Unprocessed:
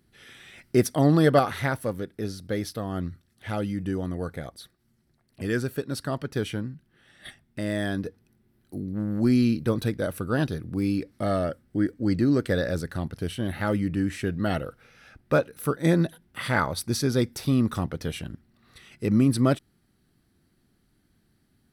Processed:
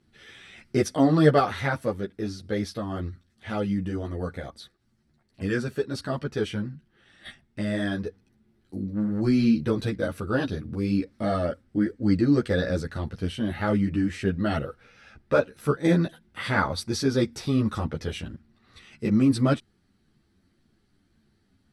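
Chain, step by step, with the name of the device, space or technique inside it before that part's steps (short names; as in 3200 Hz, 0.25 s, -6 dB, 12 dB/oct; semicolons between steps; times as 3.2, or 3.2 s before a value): string-machine ensemble chorus (ensemble effect; LPF 7400 Hz 12 dB/oct); gain +3.5 dB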